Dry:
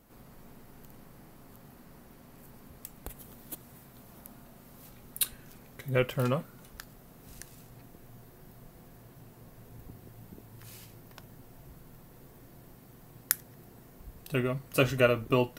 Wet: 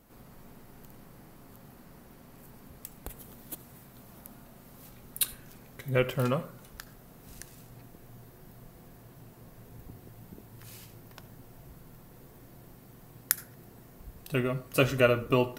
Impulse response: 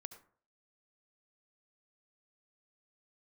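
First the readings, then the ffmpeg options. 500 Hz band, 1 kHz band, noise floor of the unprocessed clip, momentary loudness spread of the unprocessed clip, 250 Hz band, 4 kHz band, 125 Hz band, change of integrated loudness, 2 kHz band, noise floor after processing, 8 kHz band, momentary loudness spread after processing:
+1.0 dB, +1.0 dB, -55 dBFS, 23 LU, +1.0 dB, +1.0 dB, +0.5 dB, +0.5 dB, +1.0 dB, -54 dBFS, +1.0 dB, 24 LU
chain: -filter_complex "[0:a]asplit=2[a][b];[1:a]atrim=start_sample=2205[c];[b][c]afir=irnorm=-1:irlink=0,volume=4dB[d];[a][d]amix=inputs=2:normalize=0,volume=-4.5dB"

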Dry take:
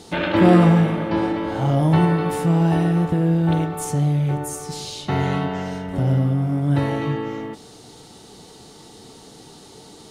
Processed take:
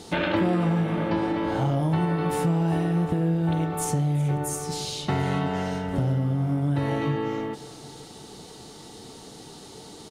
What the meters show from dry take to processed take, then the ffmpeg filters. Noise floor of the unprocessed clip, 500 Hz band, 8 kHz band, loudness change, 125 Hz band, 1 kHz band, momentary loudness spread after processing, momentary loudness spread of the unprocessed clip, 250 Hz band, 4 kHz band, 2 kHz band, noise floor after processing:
-45 dBFS, -5.0 dB, -0.5 dB, -5.5 dB, -5.5 dB, -4.5 dB, 19 LU, 13 LU, -6.0 dB, -2.5 dB, -4.0 dB, -45 dBFS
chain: -af "acompressor=threshold=-21dB:ratio=5,aecho=1:1:370|740|1110|1480:0.1|0.054|0.0292|0.0157"

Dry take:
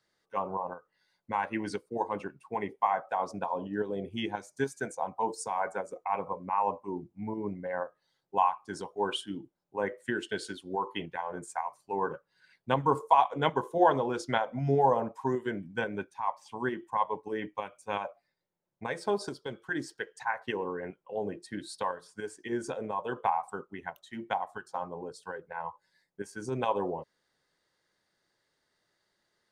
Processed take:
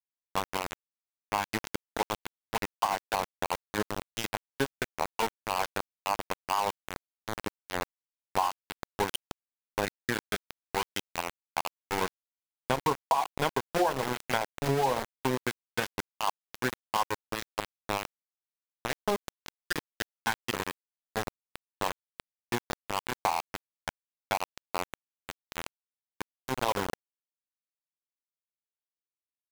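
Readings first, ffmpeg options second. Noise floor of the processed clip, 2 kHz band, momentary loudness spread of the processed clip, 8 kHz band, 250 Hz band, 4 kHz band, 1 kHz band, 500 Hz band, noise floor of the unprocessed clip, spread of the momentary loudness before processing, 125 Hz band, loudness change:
under -85 dBFS, +2.5 dB, 13 LU, +8.0 dB, -2.5 dB, +6.0 dB, -1.5 dB, -2.5 dB, -79 dBFS, 13 LU, -1.0 dB, -0.5 dB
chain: -af "aeval=exprs='val(0)*gte(abs(val(0)),0.0473)':c=same,acompressor=threshold=-28dB:ratio=6,volume=5dB"

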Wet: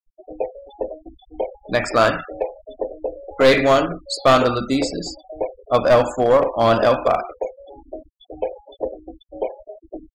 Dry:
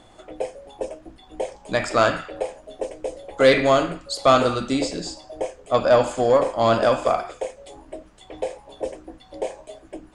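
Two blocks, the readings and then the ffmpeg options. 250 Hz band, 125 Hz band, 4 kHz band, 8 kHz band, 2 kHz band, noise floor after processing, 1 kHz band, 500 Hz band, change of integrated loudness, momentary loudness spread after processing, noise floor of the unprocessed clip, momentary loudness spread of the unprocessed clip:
+2.5 dB, +3.0 dB, +2.0 dB, 0.0 dB, +2.5 dB, -61 dBFS, +2.0 dB, +2.0 dB, +2.0 dB, 21 LU, -51 dBFS, 17 LU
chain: -af "afftfilt=real='re*gte(hypot(re,im),0.0251)':imag='im*gte(hypot(re,im),0.0251)':win_size=1024:overlap=0.75,aeval=exprs='clip(val(0),-1,0.188)':c=same,volume=3dB"

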